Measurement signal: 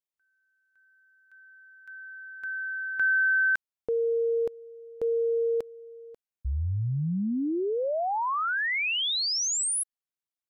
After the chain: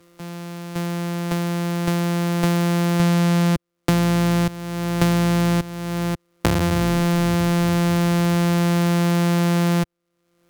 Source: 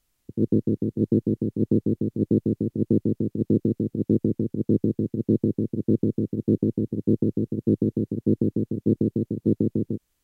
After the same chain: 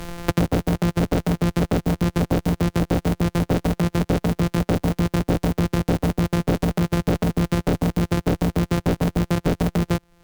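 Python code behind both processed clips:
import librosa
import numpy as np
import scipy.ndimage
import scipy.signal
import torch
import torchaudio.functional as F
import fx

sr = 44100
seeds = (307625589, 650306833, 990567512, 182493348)

y = np.r_[np.sort(x[:len(x) // 256 * 256].reshape(-1, 256), axis=1).ravel(), x[len(x) // 256 * 256:]]
y = fx.fold_sine(y, sr, drive_db=12, ceiling_db=-9.5)
y = fx.band_squash(y, sr, depth_pct=100)
y = y * 10.0 ** (-5.5 / 20.0)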